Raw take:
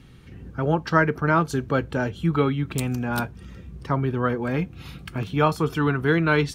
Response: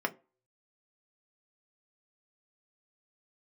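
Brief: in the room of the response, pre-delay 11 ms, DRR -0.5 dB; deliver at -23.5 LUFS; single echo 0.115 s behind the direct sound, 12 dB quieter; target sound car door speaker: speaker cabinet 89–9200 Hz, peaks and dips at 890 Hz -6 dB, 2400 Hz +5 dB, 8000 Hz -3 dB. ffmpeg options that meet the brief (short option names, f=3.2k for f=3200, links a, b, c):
-filter_complex "[0:a]aecho=1:1:115:0.251,asplit=2[a][b];[1:a]atrim=start_sample=2205,adelay=11[c];[b][c]afir=irnorm=-1:irlink=0,volume=-6.5dB[d];[a][d]amix=inputs=2:normalize=0,highpass=89,equalizer=f=890:t=q:w=4:g=-6,equalizer=f=2.4k:t=q:w=4:g=5,equalizer=f=8k:t=q:w=4:g=-3,lowpass=f=9.2k:w=0.5412,lowpass=f=9.2k:w=1.3066,volume=-2.5dB"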